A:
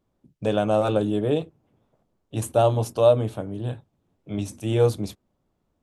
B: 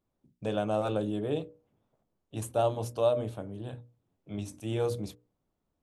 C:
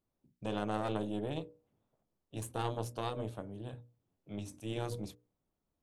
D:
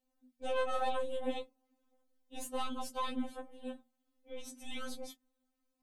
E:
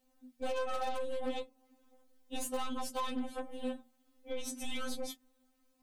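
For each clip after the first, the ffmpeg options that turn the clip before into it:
-af "bandreject=f=60:t=h:w=6,bandreject=f=120:t=h:w=6,bandreject=f=180:t=h:w=6,bandreject=f=240:t=h:w=6,bandreject=f=300:t=h:w=6,bandreject=f=360:t=h:w=6,bandreject=f=420:t=h:w=6,bandreject=f=480:t=h:w=6,bandreject=f=540:t=h:w=6,bandreject=f=600:t=h:w=6,volume=-7.5dB"
-af "afftfilt=real='re*lt(hypot(re,im),0.251)':imag='im*lt(hypot(re,im),0.251)':win_size=1024:overlap=0.75,aeval=exprs='0.106*(cos(1*acos(clip(val(0)/0.106,-1,1)))-cos(1*PI/2))+0.0422*(cos(2*acos(clip(val(0)/0.106,-1,1)))-cos(2*PI/2))':c=same,volume=-4.5dB"
-af "afftfilt=real='re*3.46*eq(mod(b,12),0)':imag='im*3.46*eq(mod(b,12),0)':win_size=2048:overlap=0.75,volume=5dB"
-af "acompressor=threshold=-45dB:ratio=3,aeval=exprs='0.0168*(cos(1*acos(clip(val(0)/0.0168,-1,1)))-cos(1*PI/2))+0.00211*(cos(5*acos(clip(val(0)/0.0168,-1,1)))-cos(5*PI/2))+0.00133*(cos(7*acos(clip(val(0)/0.0168,-1,1)))-cos(7*PI/2))':c=same,volume=9dB"

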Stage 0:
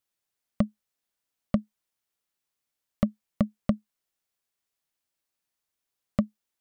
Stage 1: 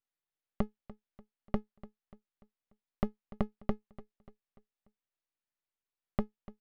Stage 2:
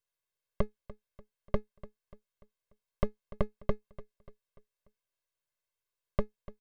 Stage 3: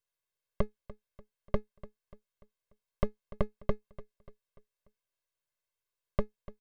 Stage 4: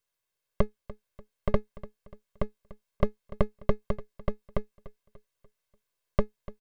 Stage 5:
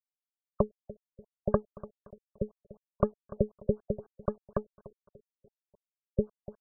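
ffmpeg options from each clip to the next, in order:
-af "lowpass=3.2k,aeval=exprs='max(val(0),0)':c=same,aecho=1:1:293|586|879|1172:0.126|0.0567|0.0255|0.0115,volume=-4dB"
-af "aecho=1:1:1.9:0.97"
-af anull
-af "aecho=1:1:873:0.562,volume=5dB"
-af "acrusher=bits=9:mix=0:aa=0.000001,highpass=f=130:p=1,afftfilt=real='re*lt(b*sr/1024,550*pow(1700/550,0.5+0.5*sin(2*PI*4*pts/sr)))':imag='im*lt(b*sr/1024,550*pow(1700/550,0.5+0.5*sin(2*PI*4*pts/sr)))':win_size=1024:overlap=0.75,volume=2.5dB"

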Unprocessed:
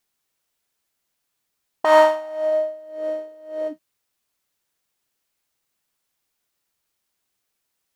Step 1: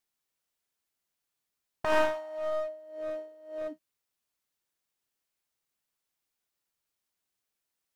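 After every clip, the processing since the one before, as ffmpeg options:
-af "aeval=exprs='clip(val(0),-1,0.0531)':c=same,volume=-8.5dB"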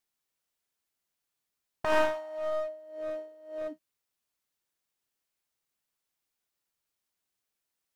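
-af anull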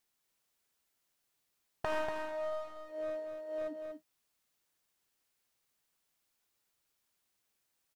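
-af "acompressor=threshold=-41dB:ratio=2.5,aecho=1:1:239:0.501,volume=3.5dB"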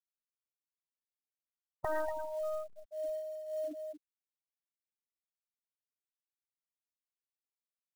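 -af "afftfilt=real='re*gte(hypot(re,im),0.0398)':imag='im*gte(hypot(re,im),0.0398)':win_size=1024:overlap=0.75,acrusher=bits=6:mode=log:mix=0:aa=0.000001,volume=1dB"

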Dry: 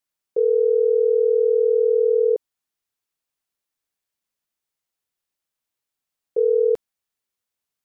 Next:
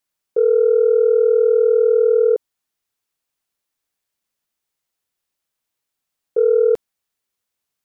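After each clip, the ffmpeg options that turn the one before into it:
-af "acontrast=56,volume=-2dB"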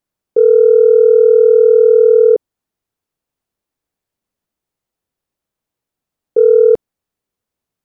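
-af "tiltshelf=f=970:g=7,volume=2dB"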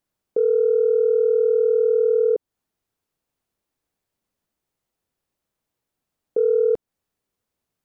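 -af "alimiter=limit=-12.5dB:level=0:latency=1:release=201"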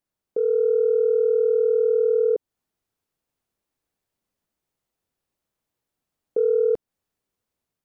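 -af "dynaudnorm=f=170:g=5:m=3.5dB,volume=-5dB"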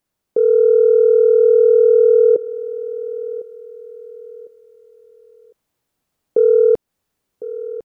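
-af "aecho=1:1:1054|2108|3162:0.168|0.0504|0.0151,volume=8dB"

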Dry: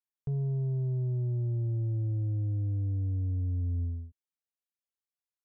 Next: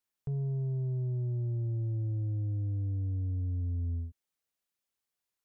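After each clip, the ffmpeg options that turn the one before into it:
-af "alimiter=level_in=12.5dB:limit=-24dB:level=0:latency=1:release=219,volume=-12.5dB,volume=6.5dB"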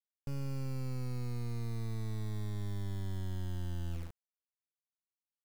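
-af "acrusher=bits=5:dc=4:mix=0:aa=0.000001,volume=-1dB"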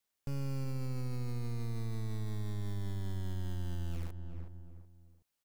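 -filter_complex "[0:a]asplit=2[a][b];[b]adelay=372,lowpass=f=1.3k:p=1,volume=-14.5dB,asplit=2[c][d];[d]adelay=372,lowpass=f=1.3k:p=1,volume=0.35,asplit=2[e][f];[f]adelay=372,lowpass=f=1.3k:p=1,volume=0.35[g];[a][c][e][g]amix=inputs=4:normalize=0,alimiter=level_in=16.5dB:limit=-24dB:level=0:latency=1:release=386,volume=-16.5dB,volume=11dB"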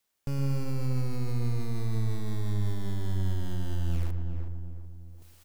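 -filter_complex "[0:a]areverse,acompressor=mode=upward:threshold=-50dB:ratio=2.5,areverse,asplit=2[a][b];[b]adelay=116,lowpass=f=1.4k:p=1,volume=-7.5dB,asplit=2[c][d];[d]adelay=116,lowpass=f=1.4k:p=1,volume=0.49,asplit=2[e][f];[f]adelay=116,lowpass=f=1.4k:p=1,volume=0.49,asplit=2[g][h];[h]adelay=116,lowpass=f=1.4k:p=1,volume=0.49,asplit=2[i][j];[j]adelay=116,lowpass=f=1.4k:p=1,volume=0.49,asplit=2[k][l];[l]adelay=116,lowpass=f=1.4k:p=1,volume=0.49[m];[a][c][e][g][i][k][m]amix=inputs=7:normalize=0,volume=6dB"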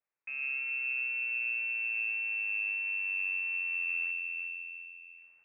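-af "lowpass=f=2.3k:t=q:w=0.5098,lowpass=f=2.3k:t=q:w=0.6013,lowpass=f=2.3k:t=q:w=0.9,lowpass=f=2.3k:t=q:w=2.563,afreqshift=-2700,volume=-9dB"

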